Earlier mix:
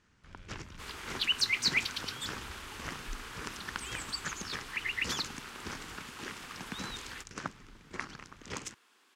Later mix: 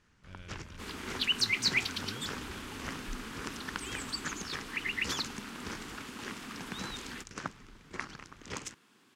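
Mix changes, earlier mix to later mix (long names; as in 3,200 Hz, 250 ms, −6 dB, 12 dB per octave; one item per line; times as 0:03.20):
speech +7.5 dB
second sound: remove high-pass filter 500 Hz 12 dB per octave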